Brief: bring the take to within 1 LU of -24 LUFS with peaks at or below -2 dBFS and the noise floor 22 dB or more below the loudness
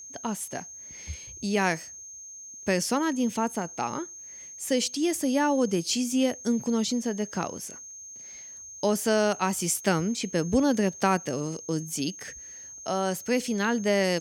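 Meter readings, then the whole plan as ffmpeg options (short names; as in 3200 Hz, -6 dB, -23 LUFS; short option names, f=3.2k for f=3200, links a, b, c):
steady tone 6400 Hz; tone level -41 dBFS; loudness -27.5 LUFS; peak -11.0 dBFS; loudness target -24.0 LUFS
-> -af "bandreject=f=6.4k:w=30"
-af "volume=3.5dB"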